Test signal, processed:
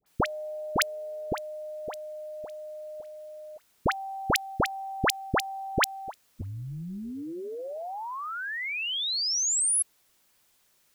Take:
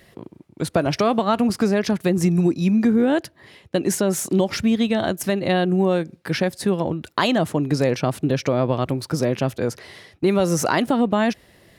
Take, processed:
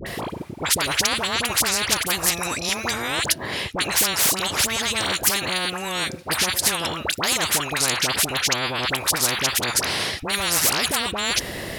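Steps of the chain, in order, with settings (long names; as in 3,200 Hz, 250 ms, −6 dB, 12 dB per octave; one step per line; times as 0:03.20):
all-pass dispersion highs, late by 63 ms, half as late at 1,100 Hz
every bin compressed towards the loudest bin 10 to 1
level +3 dB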